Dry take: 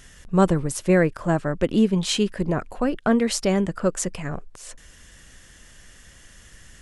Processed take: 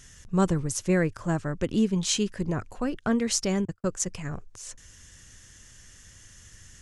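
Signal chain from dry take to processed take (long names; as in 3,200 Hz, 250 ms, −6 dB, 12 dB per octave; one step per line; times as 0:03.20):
0:03.65–0:04.09: noise gate −26 dBFS, range −57 dB
graphic EQ with 15 bands 100 Hz +10 dB, 630 Hz −4 dB, 6,300 Hz +9 dB
level −5.5 dB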